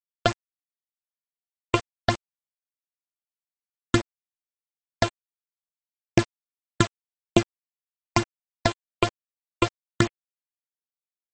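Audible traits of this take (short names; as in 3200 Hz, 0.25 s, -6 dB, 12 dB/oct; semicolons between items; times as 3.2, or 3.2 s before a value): a buzz of ramps at a fixed pitch in blocks of 128 samples; phasing stages 8, 3.3 Hz, lowest notch 220–1800 Hz; a quantiser's noise floor 6-bit, dither none; MP3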